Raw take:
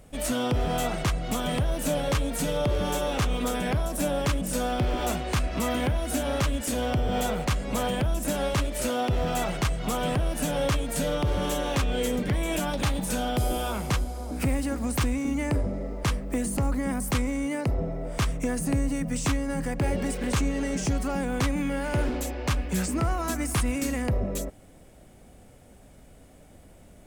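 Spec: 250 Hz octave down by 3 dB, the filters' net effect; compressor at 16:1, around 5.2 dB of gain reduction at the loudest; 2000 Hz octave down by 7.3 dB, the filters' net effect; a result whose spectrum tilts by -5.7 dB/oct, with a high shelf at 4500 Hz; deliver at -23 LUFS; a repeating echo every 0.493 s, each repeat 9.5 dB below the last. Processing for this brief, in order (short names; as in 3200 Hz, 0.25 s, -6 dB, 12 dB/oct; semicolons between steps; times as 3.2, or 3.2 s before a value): bell 250 Hz -3.5 dB; bell 2000 Hz -8.5 dB; high shelf 4500 Hz -6.5 dB; compressor 16:1, threshold -27 dBFS; feedback echo 0.493 s, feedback 33%, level -9.5 dB; gain +9.5 dB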